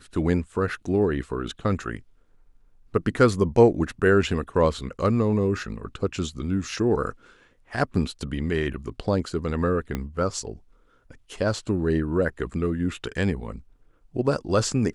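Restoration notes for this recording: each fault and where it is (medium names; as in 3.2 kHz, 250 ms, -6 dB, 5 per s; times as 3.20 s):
9.95 s: pop -14 dBFS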